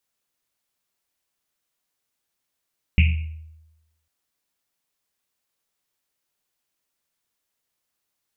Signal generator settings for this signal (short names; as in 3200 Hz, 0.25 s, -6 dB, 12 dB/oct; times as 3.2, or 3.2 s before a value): Risset drum, pitch 79 Hz, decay 1.01 s, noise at 2500 Hz, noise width 630 Hz, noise 20%